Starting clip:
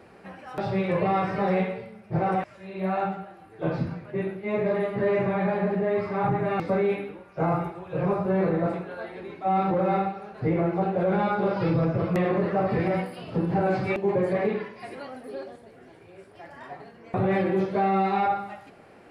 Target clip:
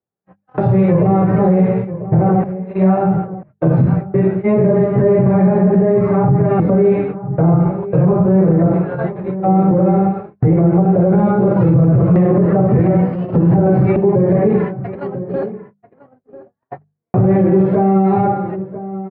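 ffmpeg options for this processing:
ffmpeg -i in.wav -filter_complex "[0:a]lowpass=1400,agate=range=-55dB:threshold=-37dB:ratio=16:detection=peak,equalizer=frequency=130:width=1.5:gain=9,bandreject=frequency=50:width_type=h:width=6,bandreject=frequency=100:width_type=h:width=6,bandreject=frequency=150:width_type=h:width=6,bandreject=frequency=200:width_type=h:width=6,acrossover=split=530[link_01][link_02];[link_02]acompressor=threshold=-37dB:ratio=6[link_03];[link_01][link_03]amix=inputs=2:normalize=0,asplit=2[link_04][link_05];[link_05]adelay=991.3,volume=-16dB,highshelf=frequency=4000:gain=-22.3[link_06];[link_04][link_06]amix=inputs=2:normalize=0,alimiter=level_in=19.5dB:limit=-1dB:release=50:level=0:latency=1,volume=-4dB" out.wav

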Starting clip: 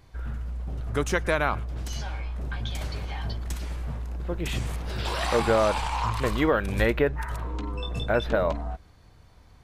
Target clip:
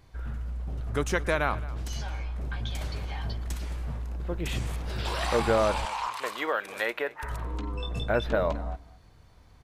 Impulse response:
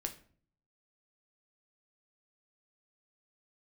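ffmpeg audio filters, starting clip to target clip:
-filter_complex "[0:a]asettb=1/sr,asplit=3[link_01][link_02][link_03];[link_01]atrim=end=5.854[link_04];[link_02]atrim=start=5.85:end=7.23,asetpts=PTS-STARTPTS,afade=type=in:duration=0.004:curve=qsin,afade=type=out:start_time=1.376:duration=0.004:curve=qsin,highpass=620[link_05];[link_03]atrim=start=7.226[link_06];[link_04][link_05]acrossfade=duration=0.004:curve1=hsin:curve2=qsin[link_07];[link_07][link_06]acrossfade=duration=0.004:curve1=qsin:curve2=hsin,aecho=1:1:217:0.112,volume=-2dB"

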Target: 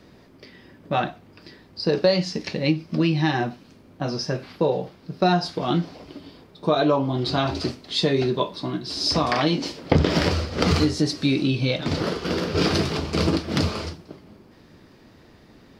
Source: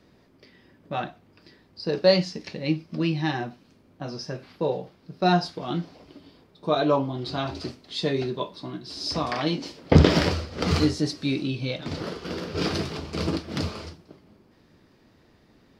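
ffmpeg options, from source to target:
ffmpeg -i in.wav -af "acompressor=threshold=-24dB:ratio=4,volume=7.5dB" out.wav

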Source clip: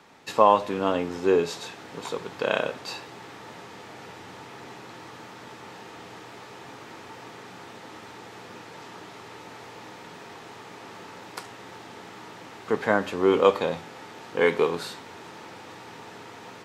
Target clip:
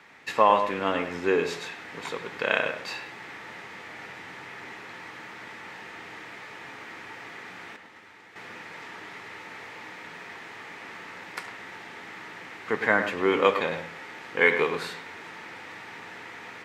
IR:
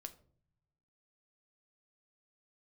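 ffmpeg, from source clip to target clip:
-filter_complex "[0:a]asettb=1/sr,asplit=3[link_01][link_02][link_03];[link_01]atrim=end=7.764[link_04];[link_02]atrim=start=7.76:end=8.36,asetpts=PTS-STARTPTS,afade=type=in:duration=0.004:curve=qsin,afade=type=out:start_time=0.596:duration=0.004:curve=qsin,agate=range=-9dB:threshold=-41dB:ratio=16:detection=peak[link_05];[link_03]atrim=start=8.356[link_06];[link_04][link_05]acrossfade=duration=0.004:curve1=hsin:curve2=qsin[link_07];[link_07][link_06]acrossfade=duration=0.004:curve1=qsin:curve2=hsin,equalizer=frequency=2000:width_type=o:width=1:gain=12.5,asplit=2[link_08][link_09];[1:a]atrim=start_sample=2205,lowpass=3400,adelay=103[link_10];[link_09][link_10]afir=irnorm=-1:irlink=0,volume=-4dB[link_11];[link_08][link_11]amix=inputs=2:normalize=0,volume=-4dB"

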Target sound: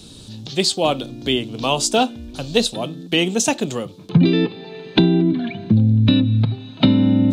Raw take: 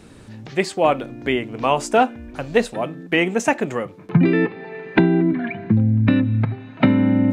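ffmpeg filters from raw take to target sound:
ffmpeg -i in.wav -filter_complex "[0:a]highshelf=frequency=2700:width_type=q:width=3:gain=11,acrossover=split=310[link_01][link_02];[link_01]acontrast=27[link_03];[link_03][link_02]amix=inputs=2:normalize=0,volume=-2dB" out.wav

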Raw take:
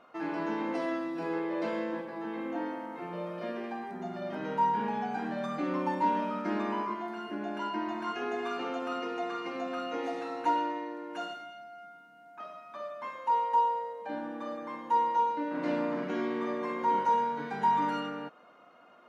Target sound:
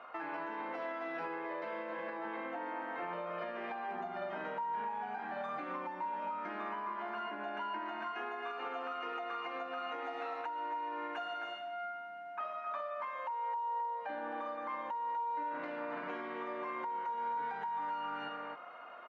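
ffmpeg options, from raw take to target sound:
ffmpeg -i in.wav -filter_complex "[0:a]aecho=1:1:264:0.355,acompressor=threshold=-36dB:ratio=10,acrossover=split=580 3000:gain=0.178 1 0.126[link_01][link_02][link_03];[link_01][link_02][link_03]amix=inputs=3:normalize=0,alimiter=level_in=16dB:limit=-24dB:level=0:latency=1:release=393,volume=-16dB,volume=9dB" out.wav

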